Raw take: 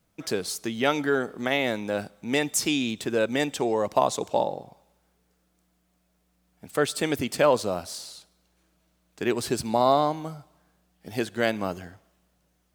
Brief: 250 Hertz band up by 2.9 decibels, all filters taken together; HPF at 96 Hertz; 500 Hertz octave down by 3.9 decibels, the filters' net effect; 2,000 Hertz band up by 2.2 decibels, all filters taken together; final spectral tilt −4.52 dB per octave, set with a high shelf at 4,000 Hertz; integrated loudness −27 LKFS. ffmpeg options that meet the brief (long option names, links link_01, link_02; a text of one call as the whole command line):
ffmpeg -i in.wav -af "highpass=96,equalizer=frequency=250:width_type=o:gain=5.5,equalizer=frequency=500:width_type=o:gain=-6.5,equalizer=frequency=2000:width_type=o:gain=4.5,highshelf=frequency=4000:gain=-6.5" out.wav